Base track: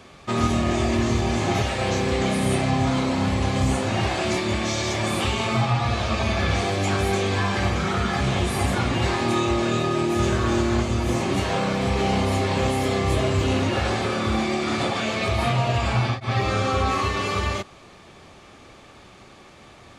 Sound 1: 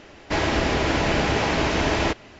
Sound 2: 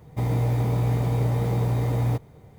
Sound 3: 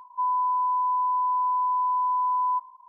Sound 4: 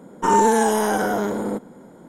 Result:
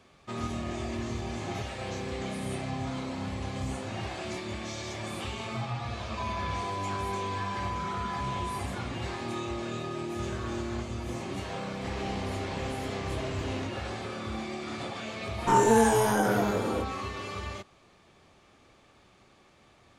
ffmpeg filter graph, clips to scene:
ffmpeg -i bed.wav -i cue0.wav -i cue1.wav -i cue2.wav -i cue3.wav -filter_complex "[0:a]volume=-12.5dB[link_01];[3:a]acompressor=threshold=-32dB:ratio=6:attack=3.2:release=140:knee=1:detection=peak[link_02];[1:a]acompressor=threshold=-26dB:ratio=6:attack=3.2:release=140:knee=1:detection=peak[link_03];[4:a]flanger=delay=19.5:depth=2.5:speed=0.99[link_04];[link_02]atrim=end=2.88,asetpts=PTS-STARTPTS,volume=-3.5dB,afade=type=in:duration=0.004:curve=hsin,afade=type=out:start_time=2.876:duration=0.004:curve=hsin,adelay=6000[link_05];[link_03]atrim=end=2.39,asetpts=PTS-STARTPTS,volume=-11.5dB,afade=type=in:duration=0.004:curve=hsin,afade=type=out:start_time=2.386:duration=0.004:curve=hsin,adelay=508914S[link_06];[link_04]atrim=end=2.08,asetpts=PTS-STARTPTS,volume=-1.5dB,afade=type=in:duration=0.004:curve=hsin,afade=type=out:start_time=2.076:duration=0.004:curve=hsin,adelay=672084S[link_07];[link_01][link_05][link_06][link_07]amix=inputs=4:normalize=0" out.wav

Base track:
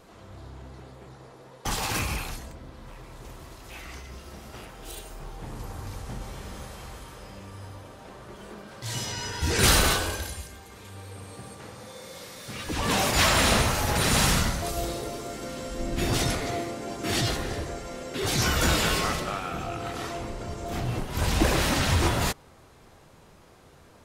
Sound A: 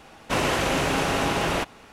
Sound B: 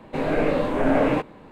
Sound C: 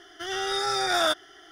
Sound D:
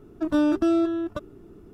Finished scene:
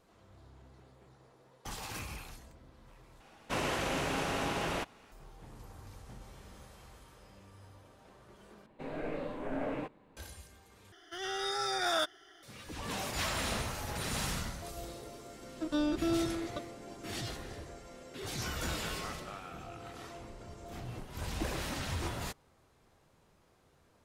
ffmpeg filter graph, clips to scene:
ffmpeg -i bed.wav -i cue0.wav -i cue1.wav -i cue2.wav -i cue3.wav -filter_complex "[0:a]volume=-13.5dB[link_01];[4:a]equalizer=frequency=4300:width_type=o:width=1.2:gain=12[link_02];[link_01]asplit=4[link_03][link_04][link_05][link_06];[link_03]atrim=end=3.204[link_07];[1:a]atrim=end=1.92,asetpts=PTS-STARTPTS,volume=-10dB[link_08];[link_04]atrim=start=5.116:end=8.664[link_09];[2:a]atrim=end=1.51,asetpts=PTS-STARTPTS,volume=-16.5dB[link_10];[link_05]atrim=start=10.166:end=10.924[link_11];[3:a]atrim=end=1.51,asetpts=PTS-STARTPTS,volume=-7.5dB[link_12];[link_06]atrim=start=12.426[link_13];[link_02]atrim=end=1.73,asetpts=PTS-STARTPTS,volume=-10.5dB,afade=type=in:duration=0.004:curve=hsin,afade=type=out:start_time=1.726:duration=0.004:curve=hsin,adelay=679140S[link_14];[link_07][link_08]acrossfade=duration=0.004:curve1=hsin:curve2=hsin[link_15];[link_15][link_09]acrossfade=duration=0.004:curve1=hsin:curve2=hsin[link_16];[link_16][link_10]acrossfade=duration=0.004:curve1=hsin:curve2=hsin[link_17];[link_17][link_11]acrossfade=duration=0.004:curve1=hsin:curve2=hsin[link_18];[link_18][link_12]acrossfade=duration=0.004:curve1=hsin:curve2=hsin[link_19];[link_19][link_13]acrossfade=duration=0.004:curve1=hsin:curve2=hsin[link_20];[link_20][link_14]amix=inputs=2:normalize=0" out.wav

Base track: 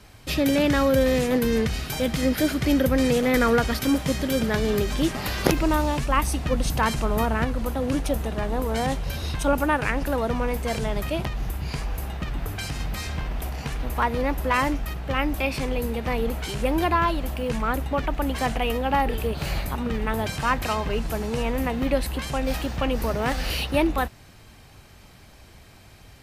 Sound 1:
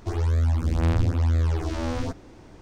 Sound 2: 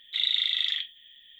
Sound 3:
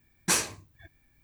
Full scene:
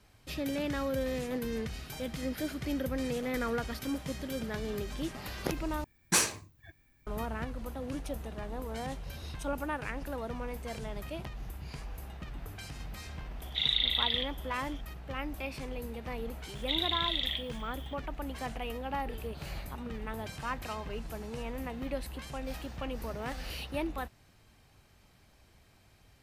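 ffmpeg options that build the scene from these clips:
ffmpeg -i bed.wav -i cue0.wav -i cue1.wav -i cue2.wav -filter_complex "[2:a]asplit=2[link_01][link_02];[0:a]volume=-13dB[link_03];[link_01]aresample=11025,aresample=44100[link_04];[link_02]acompressor=threshold=-34dB:ratio=6:attack=82:release=96:knee=1:detection=rms[link_05];[link_03]asplit=2[link_06][link_07];[link_06]atrim=end=5.844[link_08];[3:a]atrim=end=1.23,asetpts=PTS-STARTPTS,volume=-1dB[link_09];[link_07]atrim=start=7.066[link_10];[link_04]atrim=end=1.39,asetpts=PTS-STARTPTS,volume=-3dB,afade=type=in:duration=0.004:curve=hsin,afade=type=out:start_time=1.386:duration=0.004:curve=hsin,adelay=13420[link_11];[link_05]atrim=end=1.39,asetpts=PTS-STARTPTS,afade=type=in:duration=0.004:curve=hsin,afade=type=out:start_time=1.386:duration=0.004:curve=hsin,adelay=16550[link_12];[link_08][link_09]acrossfade=duration=0.004:curve1=hsin:curve2=hsin[link_13];[link_13][link_10]acrossfade=duration=0.004:curve1=hsin:curve2=hsin[link_14];[link_14][link_11][link_12]amix=inputs=3:normalize=0" out.wav

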